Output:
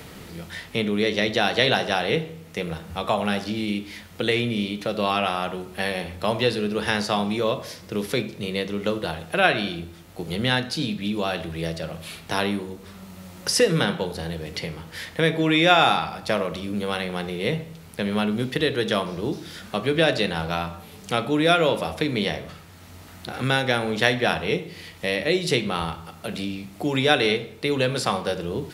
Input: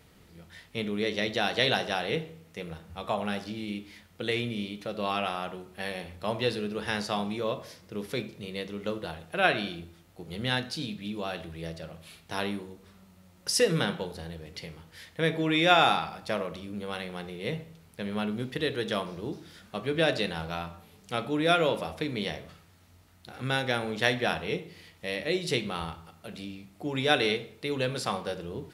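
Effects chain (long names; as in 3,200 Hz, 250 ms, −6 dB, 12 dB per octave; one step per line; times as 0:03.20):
multiband upward and downward compressor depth 40%
level +7 dB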